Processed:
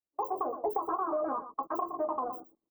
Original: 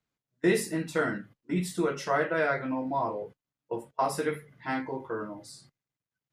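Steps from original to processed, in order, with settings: opening faded in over 1.55 s; Chebyshev band-stop 500–8400 Hz, order 5; high shelf 5000 Hz +7.5 dB; echo 0.271 s -14.5 dB; compressor 6:1, threshold -36 dBFS, peak gain reduction 12 dB; low shelf 180 Hz +5 dB; speed mistake 33 rpm record played at 78 rpm; gain +6.5 dB

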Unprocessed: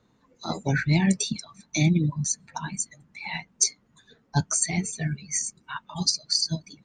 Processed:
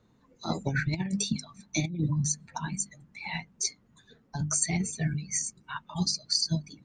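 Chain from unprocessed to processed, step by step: low shelf 300 Hz +6.5 dB; notches 50/100/150/200/250/300 Hz; negative-ratio compressor -21 dBFS, ratio -0.5; gain -5 dB

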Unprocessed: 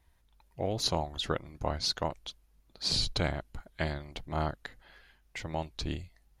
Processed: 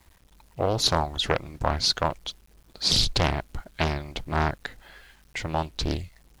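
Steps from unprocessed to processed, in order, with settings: bit-crush 11-bit; Doppler distortion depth 0.88 ms; gain +8 dB

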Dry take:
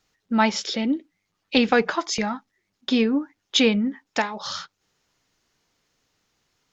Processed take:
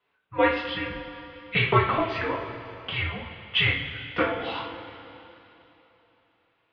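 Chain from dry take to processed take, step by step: two-slope reverb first 0.36 s, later 3.3 s, from -16 dB, DRR -4.5 dB; mistuned SSB -360 Hz 550–3400 Hz; gain -3.5 dB

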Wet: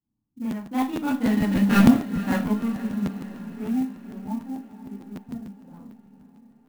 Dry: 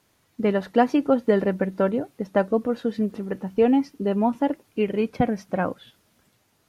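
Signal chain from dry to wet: median filter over 25 samples; Doppler pass-by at 1.79, 21 m/s, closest 2.4 m; low-pass opened by the level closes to 420 Hz, open at -32.5 dBFS; band shelf 500 Hz -15.5 dB 1.1 oct; hard clip -28.5 dBFS, distortion -9 dB; diffused feedback echo 0.498 s, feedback 57%, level -14 dB; Schroeder reverb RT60 0.31 s, combs from 27 ms, DRR -8.5 dB; crackling interface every 0.15 s, samples 512, repeat, from 0.5; clock jitter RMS 0.021 ms; gain +7 dB

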